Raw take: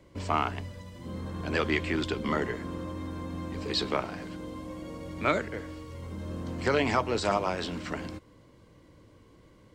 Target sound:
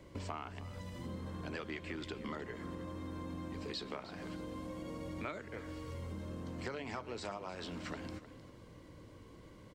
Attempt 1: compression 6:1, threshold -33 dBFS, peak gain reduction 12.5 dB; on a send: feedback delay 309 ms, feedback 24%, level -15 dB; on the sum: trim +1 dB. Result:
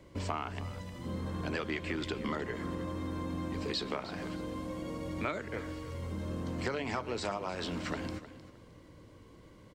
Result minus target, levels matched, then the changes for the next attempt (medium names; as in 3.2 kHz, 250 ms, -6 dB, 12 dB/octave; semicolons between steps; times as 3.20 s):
compression: peak gain reduction -7 dB
change: compression 6:1, threshold -41.5 dBFS, peak gain reduction 19.5 dB